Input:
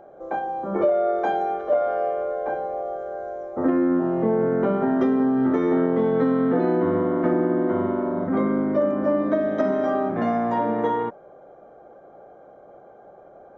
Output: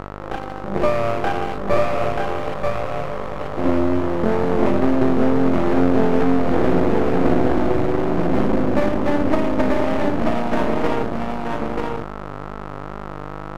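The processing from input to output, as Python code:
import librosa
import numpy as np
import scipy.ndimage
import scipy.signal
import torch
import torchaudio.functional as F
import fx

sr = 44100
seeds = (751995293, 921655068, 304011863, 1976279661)

p1 = fx.wiener(x, sr, points=41)
p2 = fx.dmg_buzz(p1, sr, base_hz=50.0, harmonics=26, level_db=-37.0, tilt_db=-1, odd_only=False)
p3 = np.maximum(p2, 0.0)
p4 = fx.wow_flutter(p3, sr, seeds[0], rate_hz=2.1, depth_cents=23.0)
p5 = p4 + fx.echo_single(p4, sr, ms=934, db=-3.0, dry=0)
y = p5 * 10.0 ** (7.0 / 20.0)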